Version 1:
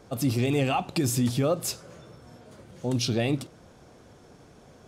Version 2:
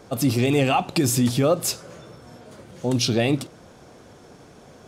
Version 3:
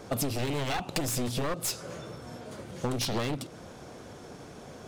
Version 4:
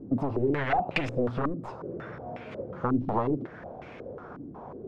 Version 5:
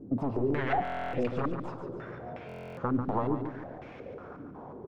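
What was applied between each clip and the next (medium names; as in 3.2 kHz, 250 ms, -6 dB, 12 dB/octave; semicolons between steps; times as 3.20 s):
bass shelf 110 Hz -6 dB; trim +6 dB
one-sided wavefolder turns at -21 dBFS; compression 12:1, threshold -28 dBFS, peak gain reduction 12.5 dB; trim +1.5 dB
step-sequenced low-pass 5.5 Hz 280–2400 Hz
feedback delay 143 ms, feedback 47%, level -8 dB; buffer glitch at 0.83/2.47 s, samples 1024, times 12; trim -3 dB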